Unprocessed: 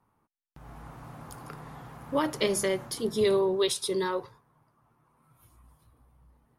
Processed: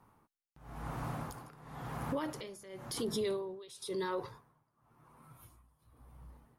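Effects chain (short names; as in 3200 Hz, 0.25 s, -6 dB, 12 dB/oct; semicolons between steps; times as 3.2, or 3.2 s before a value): compressor 3:1, threshold -35 dBFS, peak gain reduction 11 dB; limiter -33 dBFS, peak gain reduction 10 dB; tremolo 0.96 Hz, depth 88%; gain +6.5 dB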